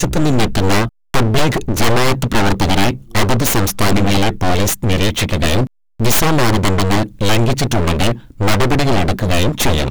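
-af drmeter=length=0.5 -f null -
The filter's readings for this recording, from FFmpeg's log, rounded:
Channel 1: DR: 3.8
Overall DR: 3.8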